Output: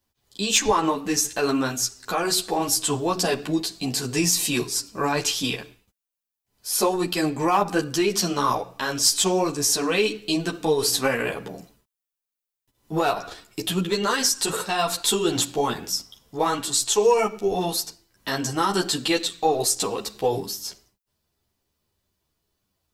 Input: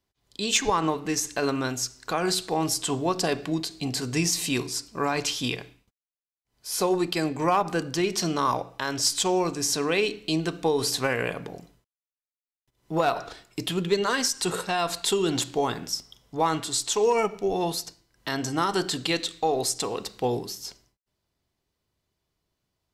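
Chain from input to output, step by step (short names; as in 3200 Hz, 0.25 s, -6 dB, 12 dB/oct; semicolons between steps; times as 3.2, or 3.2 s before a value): high shelf 11000 Hz +11 dB; notch 2100 Hz, Q 18; ensemble effect; gain +5.5 dB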